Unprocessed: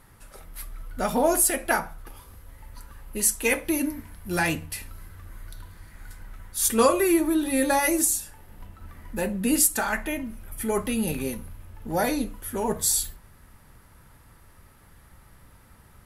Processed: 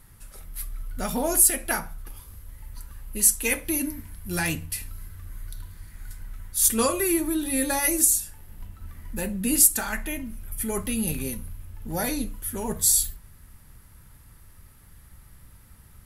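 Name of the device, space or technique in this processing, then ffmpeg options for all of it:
smiley-face EQ: -af "lowshelf=f=150:g=4.5,equalizer=f=670:t=o:w=2.8:g=-6.5,highshelf=f=8.1k:g=6.5"

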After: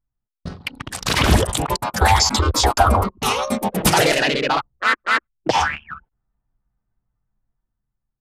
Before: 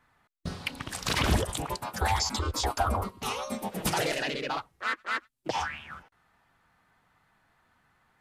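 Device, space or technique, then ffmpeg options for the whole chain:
voice memo with heavy noise removal: -af "anlmdn=0.631,dynaudnorm=f=340:g=7:m=9dB,volume=4dB"

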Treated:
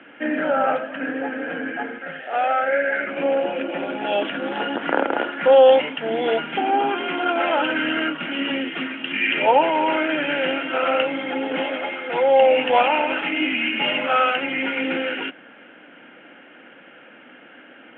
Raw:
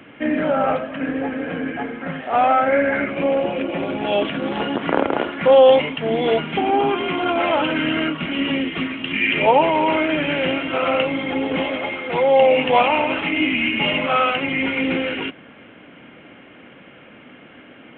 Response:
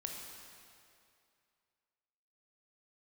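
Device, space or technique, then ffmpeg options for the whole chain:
phone earpiece: -filter_complex "[0:a]highpass=360,equalizer=f=410:t=q:w=4:g=-6,equalizer=f=640:t=q:w=4:g=-4,equalizer=f=1.1k:t=q:w=4:g=-9,equalizer=f=1.5k:t=q:w=4:g=4,equalizer=f=2.2k:t=q:w=4:g=-6,lowpass=f=3k:w=0.5412,lowpass=f=3k:w=1.3066,asettb=1/sr,asplit=3[a][b][c];[a]atrim=end=1.984[d];[b]atrim=start=1.98:end=3.07,asetpts=PTS-STARTPTS,afade=t=in:d=0.004:c=qsin,afade=t=out:st=1.086:d=0.004:c=qsin,equalizer=f=100:t=o:w=0.67:g=-9,equalizer=f=250:t=o:w=0.67:g=-10,equalizer=f=1k:t=o:w=0.67:g=-10[e];[c]atrim=start=3.066[f];[d][e]acrossfade=d=0.004:c1=hsin:c2=qsin[g];[g][f]acrossfade=d=0.004:c1=qsin:c2=hsin,volume=2.5dB"

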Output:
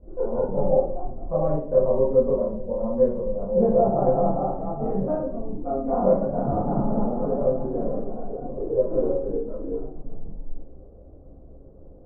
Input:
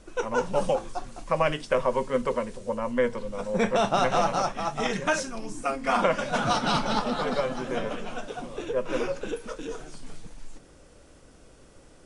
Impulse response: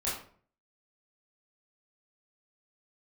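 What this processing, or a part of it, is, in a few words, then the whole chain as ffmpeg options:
next room: -filter_complex "[0:a]lowpass=f=650:w=0.5412,lowpass=f=650:w=1.3066[a];[1:a]atrim=start_sample=2205[b];[a][b]afir=irnorm=-1:irlink=0"

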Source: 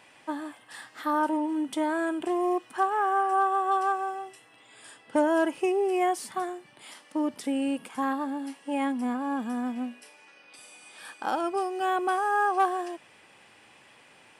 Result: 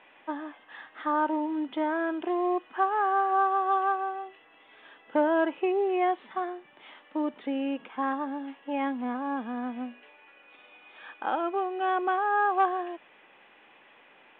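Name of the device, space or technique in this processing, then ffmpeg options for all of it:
telephone: -af "highpass=260,lowpass=3.1k" -ar 8000 -c:a pcm_mulaw

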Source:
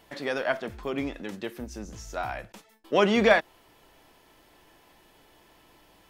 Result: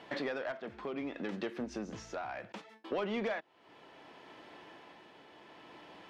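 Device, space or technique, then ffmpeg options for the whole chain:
AM radio: -af "highpass=170,lowpass=3.4k,acompressor=threshold=-39dB:ratio=5,asoftclip=type=tanh:threshold=-33dB,tremolo=f=0.67:d=0.36,volume=6.5dB"

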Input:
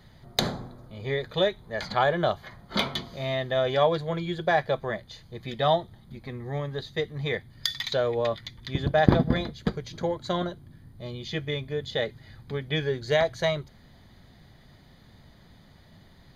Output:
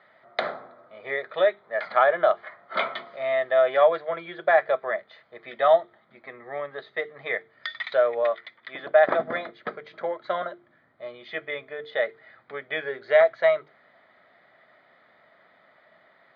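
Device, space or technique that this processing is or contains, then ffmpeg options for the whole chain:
phone earpiece: -filter_complex "[0:a]asettb=1/sr,asplit=3[a][b][c];[a]atrim=end=8.234[d];[b]atrim=start=8.23:end=9.19,asetpts=PTS-STARTPTS,afade=t=in:d=0.004:c=qsin,afade=t=out:st=0.956:d=0.004:c=qsin,highpass=f=270:p=1[e];[c]atrim=start=9.186[f];[d][e]acrossfade=d=0.004:c1=hsin:c2=qsin[g];[g][f]acrossfade=d=0.004:c1=qsin:c2=hsin,highpass=500,equalizer=f=630:t=q:w=4:g=9,equalizer=f=900:t=q:w=4:g=-3,equalizer=f=1.3k:t=q:w=4:g=9,equalizer=f=2k:t=q:w=4:g=6,equalizer=f=2.9k:t=q:w=4:g=-4,lowpass=f=3k:w=0.5412,lowpass=f=3k:w=1.3066,bandreject=f=50:t=h:w=6,bandreject=f=100:t=h:w=6,bandreject=f=150:t=h:w=6,bandreject=f=200:t=h:w=6,bandreject=f=250:t=h:w=6,bandreject=f=300:t=h:w=6,bandreject=f=350:t=h:w=6,bandreject=f=400:t=h:w=6,bandreject=f=450:t=h:w=6"

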